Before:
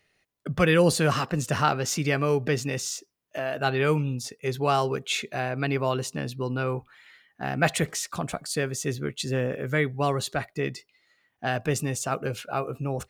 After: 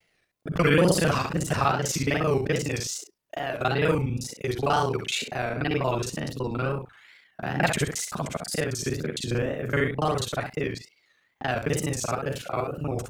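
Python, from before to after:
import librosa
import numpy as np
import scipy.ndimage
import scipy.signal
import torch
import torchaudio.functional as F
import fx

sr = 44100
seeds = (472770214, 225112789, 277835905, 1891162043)

y = fx.local_reverse(x, sr, ms=35.0)
y = fx.room_early_taps(y, sr, ms=(48, 65), db=(-15.5, -7.5))
y = fx.wow_flutter(y, sr, seeds[0], rate_hz=2.1, depth_cents=140.0)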